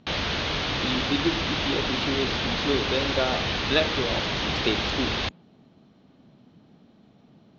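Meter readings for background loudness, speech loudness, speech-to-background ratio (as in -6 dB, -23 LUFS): -26.5 LUFS, -29.5 LUFS, -3.0 dB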